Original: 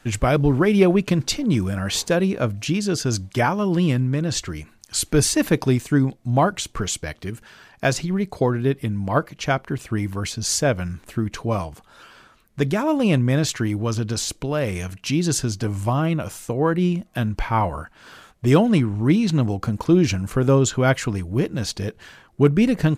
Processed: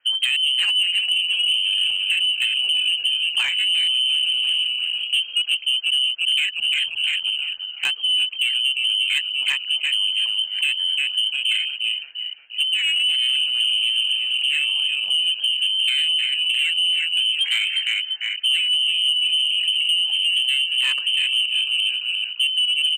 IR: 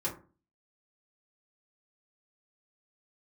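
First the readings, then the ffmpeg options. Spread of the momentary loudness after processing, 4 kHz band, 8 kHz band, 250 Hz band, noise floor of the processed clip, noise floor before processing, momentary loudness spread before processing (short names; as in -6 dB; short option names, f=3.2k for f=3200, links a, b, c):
4 LU, +18.5 dB, -7.0 dB, under -40 dB, -34 dBFS, -54 dBFS, 9 LU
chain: -filter_complex "[0:a]asplit=2[a][b];[b]asplit=8[c][d][e][f][g][h][i][j];[c]adelay=348,afreqshift=49,volume=-7dB[k];[d]adelay=696,afreqshift=98,volume=-11.6dB[l];[e]adelay=1044,afreqshift=147,volume=-16.2dB[m];[f]adelay=1392,afreqshift=196,volume=-20.7dB[n];[g]adelay=1740,afreqshift=245,volume=-25.3dB[o];[h]adelay=2088,afreqshift=294,volume=-29.9dB[p];[i]adelay=2436,afreqshift=343,volume=-34.5dB[q];[j]adelay=2784,afreqshift=392,volume=-39.1dB[r];[k][l][m][n][o][p][q][r]amix=inputs=8:normalize=0[s];[a][s]amix=inputs=2:normalize=0,afwtdn=0.0708,acompressor=threshold=-22dB:ratio=8,lowpass=f=2.7k:t=q:w=0.5098,lowpass=f=2.7k:t=q:w=0.6013,lowpass=f=2.7k:t=q:w=0.9,lowpass=f=2.7k:t=q:w=2.563,afreqshift=-3200,crystalizer=i=4.5:c=0,asoftclip=type=tanh:threshold=-13.5dB"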